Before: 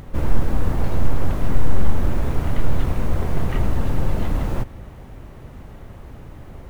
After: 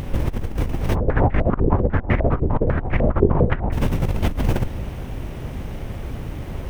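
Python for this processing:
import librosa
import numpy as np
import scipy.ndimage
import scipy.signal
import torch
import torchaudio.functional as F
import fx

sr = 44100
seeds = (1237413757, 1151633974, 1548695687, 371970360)

y = fx.lower_of_two(x, sr, delay_ms=0.33)
y = fx.over_compress(y, sr, threshold_db=-24.0, ratio=-0.5)
y = fx.filter_held_lowpass(y, sr, hz=10.0, low_hz=400.0, high_hz=2000.0, at=(0.94, 3.71), fade=0.02)
y = y * 10.0 ** (5.5 / 20.0)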